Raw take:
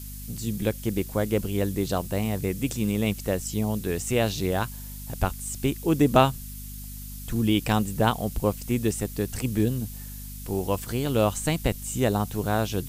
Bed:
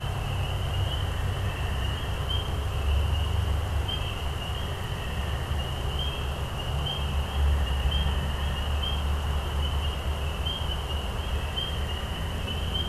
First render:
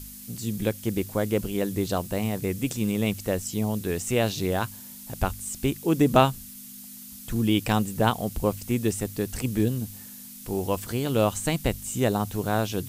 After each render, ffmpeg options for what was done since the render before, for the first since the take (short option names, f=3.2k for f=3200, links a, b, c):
-af "bandreject=f=50:t=h:w=4,bandreject=f=100:t=h:w=4,bandreject=f=150:t=h:w=4"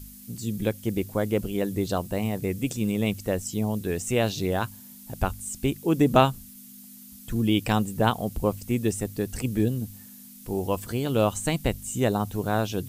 -af "afftdn=nr=6:nf=-43"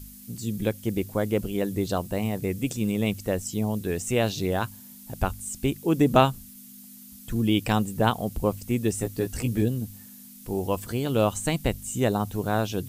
-filter_complex "[0:a]asettb=1/sr,asplit=3[a][b][c];[a]atrim=end=8.924[d];[b]atrim=start=8.92:end=9.62,asetpts=PTS-STARTPTS,afade=t=in:d=0.004:c=qsin,afade=t=out:st=0.696:d=0.004:c=qsin,asplit=2[e][f];[f]adelay=17,volume=-5.5dB[g];[e][g]amix=inputs=2:normalize=0,atrim=end_sample=30870[h];[c]atrim=start=9.616[i];[d][h]acrossfade=d=0.004:c1=hsin:c2=qsin[j];[j][i]acrossfade=d=0.004:c1=qsin:c2=hsin"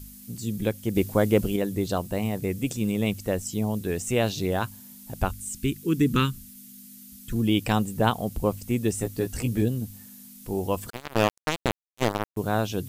-filter_complex "[0:a]asettb=1/sr,asplit=3[a][b][c];[a]atrim=end=5.314[d];[b]atrim=start=5.31:end=7.33,asetpts=PTS-STARTPTS,afade=t=in:d=0.004:c=qsin,afade=t=out:st=2.016:d=0.004:c=qsin,asuperstop=centerf=700:order=4:qfactor=0.78[e];[c]atrim=start=7.326[f];[d][e]acrossfade=d=0.004:c1=hsin:c2=qsin[g];[g][f]acrossfade=d=0.004:c1=qsin:c2=hsin,asettb=1/sr,asplit=3[h][i][j];[h]atrim=end=10.904[k];[i]atrim=start=10.9:end=12.37,asetpts=PTS-STARTPTS,afade=t=in:d=0.004:c=qsin,afade=t=out:st=1.466:d=0.004:c=qsin,acrusher=bits=2:mix=0:aa=0.5[l];[j]atrim=start=12.366[m];[k][l]acrossfade=d=0.004:c1=hsin:c2=qsin[n];[n][m]acrossfade=d=0.004:c1=qsin:c2=hsin,asplit=3[o][p][q];[o]atrim=end=0.952[r];[p]atrim=start=0.948:end=1.562,asetpts=PTS-STARTPTS,volume=4.5dB[s];[q]atrim=start=1.558[t];[r][s]acrossfade=d=0.004:c1=hsin:c2=hsin[u];[u][t]acrossfade=d=0.004:c1=hsin:c2=hsin"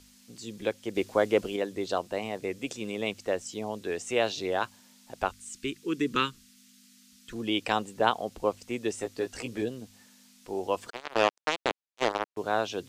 -filter_complex "[0:a]acrossover=split=330 7000:gain=0.112 1 0.0794[a][b][c];[a][b][c]amix=inputs=3:normalize=0"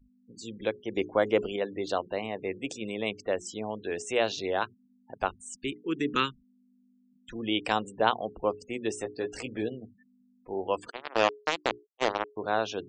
-af "bandreject=f=60:t=h:w=6,bandreject=f=120:t=h:w=6,bandreject=f=180:t=h:w=6,bandreject=f=240:t=h:w=6,bandreject=f=300:t=h:w=6,bandreject=f=360:t=h:w=6,bandreject=f=420:t=h:w=6,afftfilt=real='re*gte(hypot(re,im),0.00562)':imag='im*gte(hypot(re,im),0.00562)':win_size=1024:overlap=0.75"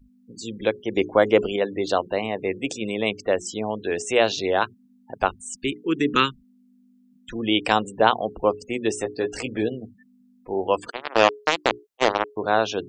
-af "volume=7.5dB,alimiter=limit=-1dB:level=0:latency=1"